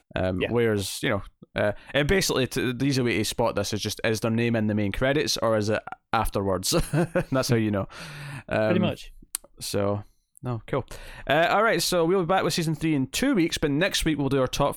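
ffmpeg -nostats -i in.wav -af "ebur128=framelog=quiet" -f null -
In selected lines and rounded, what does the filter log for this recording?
Integrated loudness:
  I:         -24.9 LUFS
  Threshold: -35.2 LUFS
Loudness range:
  LRA:         4.0 LU
  Threshold: -45.3 LUFS
  LRA low:   -27.5 LUFS
  LRA high:  -23.5 LUFS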